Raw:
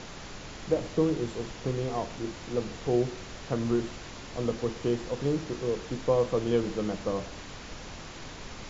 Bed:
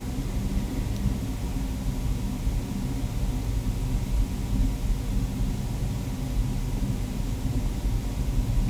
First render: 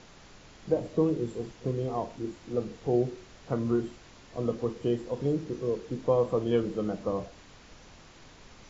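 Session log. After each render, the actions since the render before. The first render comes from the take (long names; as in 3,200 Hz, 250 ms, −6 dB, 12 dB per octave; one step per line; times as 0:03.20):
noise reduction from a noise print 10 dB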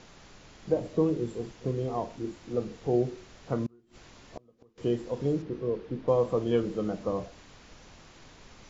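0:03.66–0:04.78: gate with flip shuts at −26 dBFS, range −32 dB
0:05.42–0:06.08: high-frequency loss of the air 200 metres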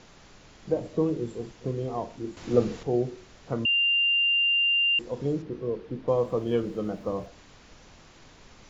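0:02.37–0:02.83: clip gain +8.5 dB
0:03.65–0:04.99: beep over 2,790 Hz −20 dBFS
0:06.16–0:07.27: running median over 5 samples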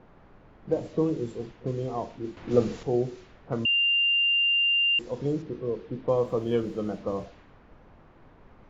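low-pass that shuts in the quiet parts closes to 1,100 Hz, open at −25 dBFS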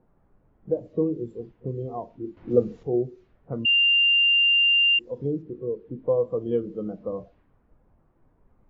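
in parallel at +1.5 dB: downward compressor, threshold −34 dBFS, peak gain reduction 17.5 dB
on the sum: every bin expanded away from the loudest bin 1.5 to 1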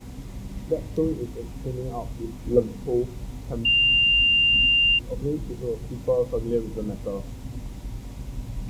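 mix in bed −8 dB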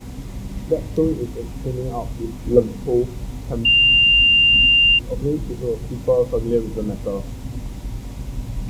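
level +5.5 dB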